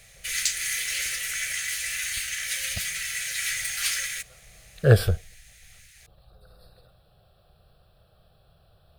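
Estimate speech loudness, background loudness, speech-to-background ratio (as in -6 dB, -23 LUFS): -22.0 LUFS, -27.0 LUFS, 5.0 dB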